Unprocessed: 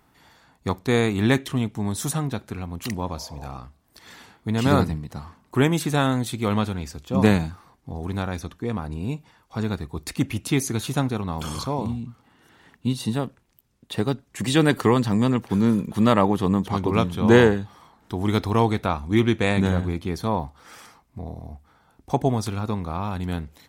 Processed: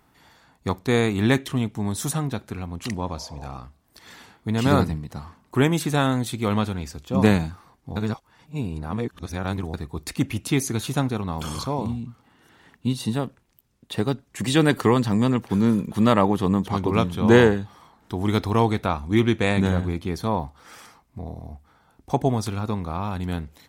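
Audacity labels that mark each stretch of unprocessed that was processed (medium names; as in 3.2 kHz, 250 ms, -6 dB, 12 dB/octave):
2.700000	3.530000	low-pass 10 kHz
7.960000	9.740000	reverse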